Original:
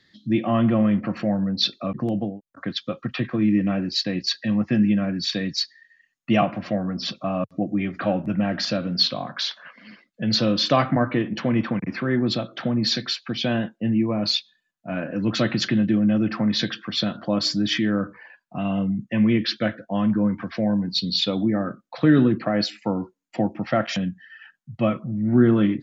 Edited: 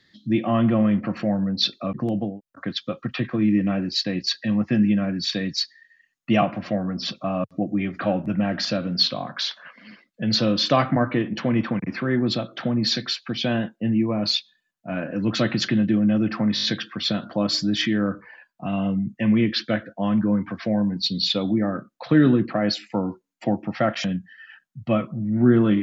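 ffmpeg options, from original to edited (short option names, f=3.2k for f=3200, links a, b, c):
-filter_complex "[0:a]asplit=5[a][b][c][d][e];[a]atrim=end=16.572[f];[b]atrim=start=16.548:end=16.572[g];[c]atrim=start=16.548:end=16.572[h];[d]atrim=start=16.548:end=16.572[i];[e]atrim=start=16.548[j];[f][g]acrossfade=d=0.004:c1=hsin:c2=hsin[k];[k][h]acrossfade=d=0.004:c1=hsin:c2=hsin[l];[l][i]acrossfade=d=0.004:c1=hsin:c2=hsin[m];[m][j]acrossfade=d=0.004:c1=hsin:c2=hsin"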